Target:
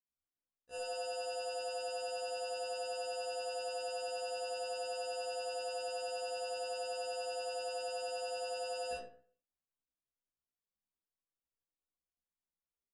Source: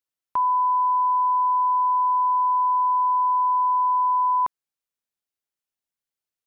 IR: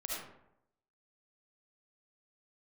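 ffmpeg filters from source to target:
-filter_complex "[0:a]lowpass=frequency=1000:poles=1,acrusher=samples=10:mix=1:aa=0.000001,asoftclip=type=hard:threshold=-30.5dB,tremolo=f=21:d=0.824,asetrate=22050,aresample=44100[link_01];[1:a]atrim=start_sample=2205,asetrate=74970,aresample=44100[link_02];[link_01][link_02]afir=irnorm=-1:irlink=0,afftfilt=real='re*1.73*eq(mod(b,3),0)':imag='im*1.73*eq(mod(b,3),0)':win_size=2048:overlap=0.75,volume=4.5dB"

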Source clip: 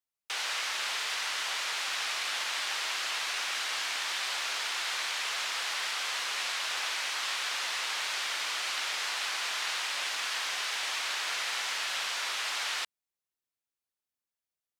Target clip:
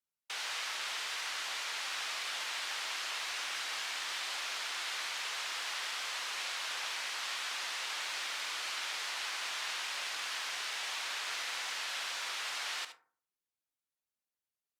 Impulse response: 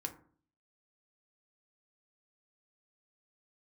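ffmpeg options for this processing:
-filter_complex "[0:a]asplit=2[link_01][link_02];[1:a]atrim=start_sample=2205,adelay=72[link_03];[link_02][link_03]afir=irnorm=-1:irlink=0,volume=-8.5dB[link_04];[link_01][link_04]amix=inputs=2:normalize=0,volume=-5.5dB" -ar 48000 -c:a libopus -b:a 64k

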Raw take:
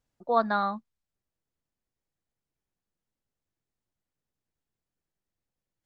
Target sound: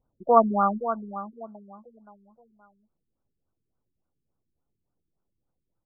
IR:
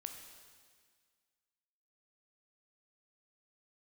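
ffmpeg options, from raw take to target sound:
-af "aecho=1:1:522|1044|1566|2088:0.282|0.101|0.0365|0.0131,afftfilt=real='re*lt(b*sr/1024,410*pow(1600/410,0.5+0.5*sin(2*PI*3.5*pts/sr)))':imag='im*lt(b*sr/1024,410*pow(1600/410,0.5+0.5*sin(2*PI*3.5*pts/sr)))':win_size=1024:overlap=0.75,volume=7dB"

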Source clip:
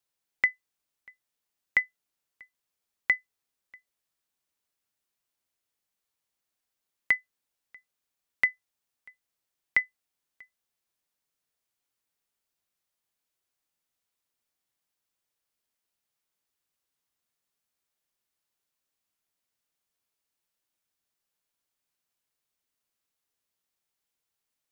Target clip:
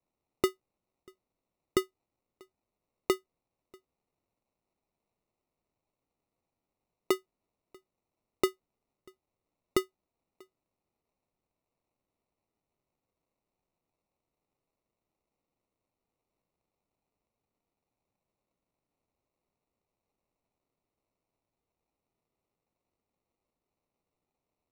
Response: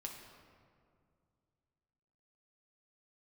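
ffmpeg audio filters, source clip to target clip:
-af "acrusher=samples=27:mix=1:aa=0.000001,volume=-3dB"

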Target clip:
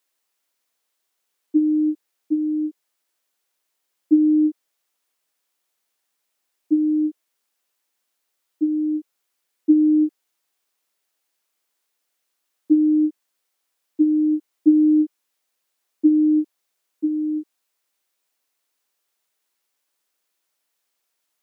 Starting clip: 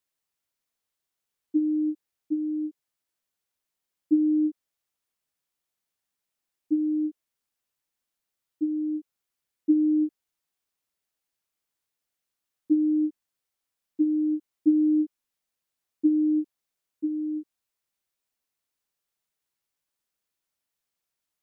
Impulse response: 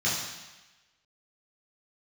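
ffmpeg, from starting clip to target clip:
-af "highpass=300,volume=9dB"

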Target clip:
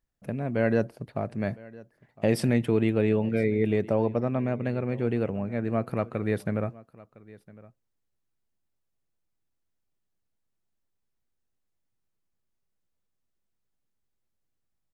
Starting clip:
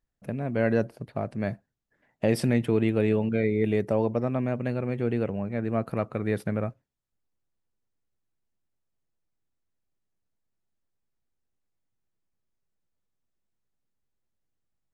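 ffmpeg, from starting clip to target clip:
ffmpeg -i in.wav -filter_complex "[0:a]asettb=1/sr,asplit=3[link_01][link_02][link_03];[link_01]atrim=end=2.934[link_04];[link_02]atrim=start=2.93:end=5.03,asetpts=PTS-STARTPTS,afade=type=in:duration=0.004:curve=qsin,afade=type=out:start_time=2.096:duration=0.004:curve=qsin,highshelf=frequency=10000:gain=-10.5[link_05];[link_03]atrim=start=5.026[link_06];[link_04][link_05]acrossfade=duration=0.004:curve1=hsin:curve2=qsin[link_07];[link_07][link_06]acrossfade=duration=0.004:curve1=qsin:curve2=hsin,aecho=1:1:1009:0.0841" out.wav

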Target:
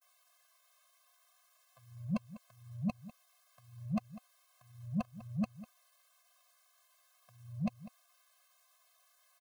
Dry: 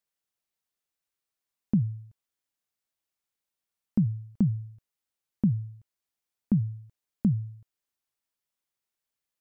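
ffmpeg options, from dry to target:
ffmpeg -i in.wav -filter_complex "[0:a]areverse,asplit=2[link_01][link_02];[link_02]acompressor=threshold=-33dB:ratio=6,volume=-0.5dB[link_03];[link_01][link_03]amix=inputs=2:normalize=0,asplit=2[link_04][link_05];[link_05]asetrate=35002,aresample=44100,atempo=1.25992,volume=-10dB[link_06];[link_04][link_06]amix=inputs=2:normalize=0,highpass=frequency=800:width_type=q:width=4.6,asetrate=48091,aresample=44100,atempo=0.917004,asoftclip=type=tanh:threshold=-37.5dB,asplit=2[link_07][link_08];[link_08]adelay=198.3,volume=-16dB,highshelf=frequency=4000:gain=-4.46[link_09];[link_07][link_09]amix=inputs=2:normalize=0,afftfilt=real='re*eq(mod(floor(b*sr/1024/250),2),0)':imag='im*eq(mod(floor(b*sr/1024/250),2),0)':win_size=1024:overlap=0.75,volume=15dB" out.wav

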